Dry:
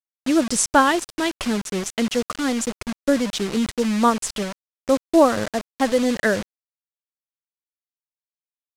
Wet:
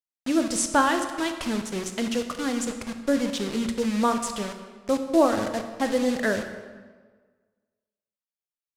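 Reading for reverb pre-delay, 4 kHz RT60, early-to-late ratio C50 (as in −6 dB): 18 ms, 1.1 s, 8.0 dB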